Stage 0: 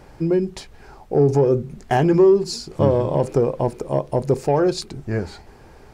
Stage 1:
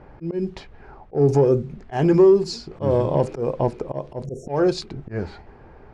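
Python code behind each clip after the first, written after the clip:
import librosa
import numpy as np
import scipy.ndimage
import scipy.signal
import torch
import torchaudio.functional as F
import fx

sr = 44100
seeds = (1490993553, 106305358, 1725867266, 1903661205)

y = fx.env_lowpass(x, sr, base_hz=1800.0, full_db=-11.0)
y = fx.spec_erase(y, sr, start_s=4.26, length_s=0.22, low_hz=730.0, high_hz=5400.0)
y = fx.auto_swell(y, sr, attack_ms=138.0)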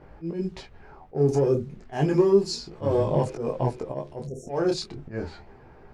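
y = fx.high_shelf(x, sr, hz=6000.0, db=8.5)
y = fx.detune_double(y, sr, cents=11)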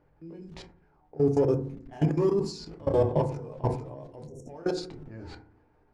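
y = fx.level_steps(x, sr, step_db=22)
y = fx.rev_fdn(y, sr, rt60_s=0.6, lf_ratio=1.55, hf_ratio=0.3, size_ms=20.0, drr_db=7.0)
y = fx.sustainer(y, sr, db_per_s=110.0)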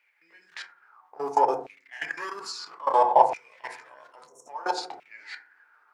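y = fx.filter_lfo_highpass(x, sr, shape='saw_down', hz=0.6, low_hz=730.0, high_hz=2400.0, q=7.5)
y = y * librosa.db_to_amplitude(5.0)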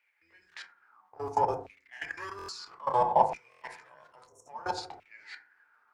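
y = fx.octave_divider(x, sr, octaves=2, level_db=-4.0)
y = fx.buffer_glitch(y, sr, at_s=(2.37, 3.5), block=1024, repeats=4)
y = y * librosa.db_to_amplitude(-5.5)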